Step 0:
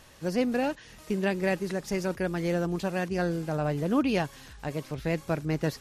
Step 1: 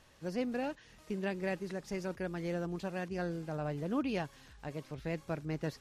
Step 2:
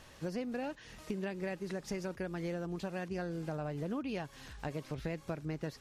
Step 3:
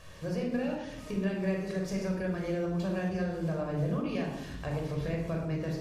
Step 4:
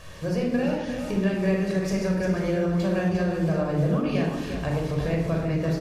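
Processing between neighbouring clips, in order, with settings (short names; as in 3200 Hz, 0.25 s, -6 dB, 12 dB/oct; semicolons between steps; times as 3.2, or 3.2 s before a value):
high shelf 10000 Hz -9 dB; gain -8.5 dB
compressor 6:1, threshold -42 dBFS, peak gain reduction 13.5 dB; gain +7 dB
shoebox room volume 2800 m³, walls furnished, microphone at 5.7 m; gain -1 dB
echo 0.351 s -8 dB; gain +7 dB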